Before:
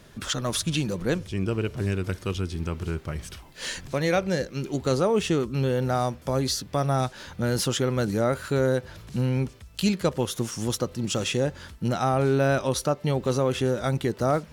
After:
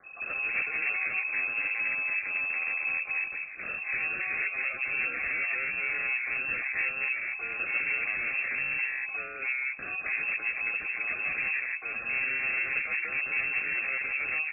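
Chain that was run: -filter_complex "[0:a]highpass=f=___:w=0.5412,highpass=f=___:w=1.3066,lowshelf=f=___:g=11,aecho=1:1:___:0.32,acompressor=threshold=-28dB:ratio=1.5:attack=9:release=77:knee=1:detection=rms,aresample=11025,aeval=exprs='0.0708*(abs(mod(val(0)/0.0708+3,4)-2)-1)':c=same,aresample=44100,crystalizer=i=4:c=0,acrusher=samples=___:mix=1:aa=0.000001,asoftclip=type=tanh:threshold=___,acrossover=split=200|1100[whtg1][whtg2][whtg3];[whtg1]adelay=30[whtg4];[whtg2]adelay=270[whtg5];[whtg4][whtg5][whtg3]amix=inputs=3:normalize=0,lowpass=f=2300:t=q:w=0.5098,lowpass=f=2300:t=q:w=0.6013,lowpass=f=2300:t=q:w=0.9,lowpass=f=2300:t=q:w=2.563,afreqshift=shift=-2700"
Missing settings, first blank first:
78, 78, 350, 7.2, 25, -23.5dB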